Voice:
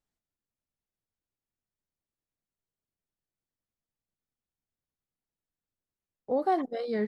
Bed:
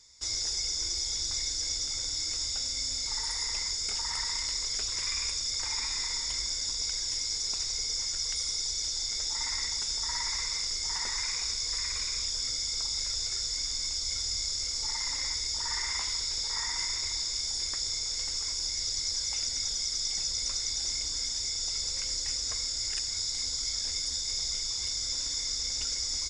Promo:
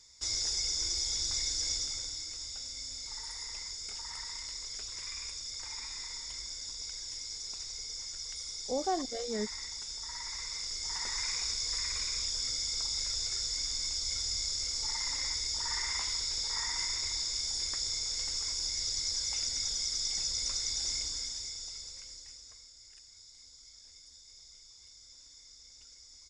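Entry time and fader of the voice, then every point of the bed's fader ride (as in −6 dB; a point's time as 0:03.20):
2.40 s, −5.5 dB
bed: 0:01.74 −1 dB
0:02.29 −9 dB
0:10.13 −9 dB
0:11.29 −2 dB
0:20.97 −2 dB
0:22.73 −22.5 dB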